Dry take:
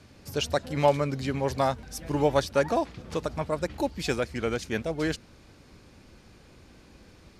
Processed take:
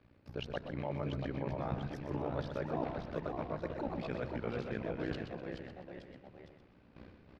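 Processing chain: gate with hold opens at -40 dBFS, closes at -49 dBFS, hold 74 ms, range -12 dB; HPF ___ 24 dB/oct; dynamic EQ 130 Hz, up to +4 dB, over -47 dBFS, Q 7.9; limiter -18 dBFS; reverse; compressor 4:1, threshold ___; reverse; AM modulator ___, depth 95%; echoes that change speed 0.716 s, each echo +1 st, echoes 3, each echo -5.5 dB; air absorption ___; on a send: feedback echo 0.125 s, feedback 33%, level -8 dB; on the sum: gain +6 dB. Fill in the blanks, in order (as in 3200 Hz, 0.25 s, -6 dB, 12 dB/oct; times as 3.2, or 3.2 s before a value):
58 Hz, -39 dBFS, 61 Hz, 360 m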